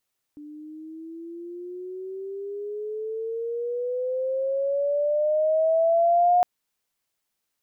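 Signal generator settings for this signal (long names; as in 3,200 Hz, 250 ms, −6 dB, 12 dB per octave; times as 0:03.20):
pitch glide with a swell sine, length 6.06 s, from 294 Hz, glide +15.5 semitones, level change +23.5 dB, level −15 dB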